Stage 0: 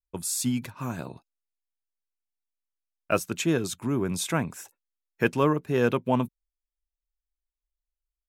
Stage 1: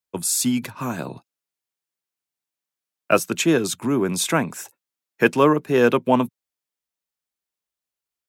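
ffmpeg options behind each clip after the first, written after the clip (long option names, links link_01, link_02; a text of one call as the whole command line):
ffmpeg -i in.wav -filter_complex "[0:a]acrossover=split=180|6400[link_01][link_02][link_03];[link_01]acompressor=threshold=-43dB:ratio=6[link_04];[link_04][link_02][link_03]amix=inputs=3:normalize=0,highpass=frequency=100:width=0.5412,highpass=frequency=100:width=1.3066,volume=7.5dB" out.wav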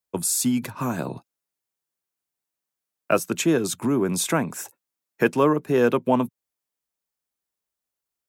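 ffmpeg -i in.wav -filter_complex "[0:a]asplit=2[link_01][link_02];[link_02]acompressor=threshold=-25dB:ratio=6,volume=3dB[link_03];[link_01][link_03]amix=inputs=2:normalize=0,equalizer=frequency=3100:width_type=o:width=2.1:gain=-4.5,volume=-5dB" out.wav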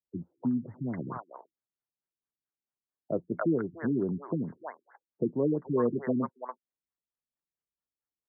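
ffmpeg -i in.wav -filter_complex "[0:a]acrossover=split=640|5700[link_01][link_02][link_03];[link_02]adelay=290[link_04];[link_03]adelay=420[link_05];[link_01][link_04][link_05]amix=inputs=3:normalize=0,afftfilt=real='re*lt(b*sr/1024,360*pow(2200/360,0.5+0.5*sin(2*PI*4.5*pts/sr)))':imag='im*lt(b*sr/1024,360*pow(2200/360,0.5+0.5*sin(2*PI*4.5*pts/sr)))':win_size=1024:overlap=0.75,volume=-6dB" out.wav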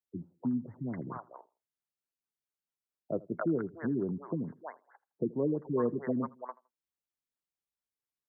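ffmpeg -i in.wav -filter_complex "[0:a]asplit=2[link_01][link_02];[link_02]adelay=81,lowpass=frequency=1700:poles=1,volume=-21.5dB,asplit=2[link_03][link_04];[link_04]adelay=81,lowpass=frequency=1700:poles=1,volume=0.28[link_05];[link_01][link_03][link_05]amix=inputs=3:normalize=0,volume=-3dB" out.wav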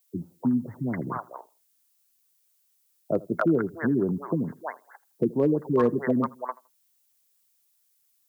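ffmpeg -i in.wav -af "crystalizer=i=5.5:c=0,volume=21dB,asoftclip=hard,volume=-21dB,volume=7.5dB" out.wav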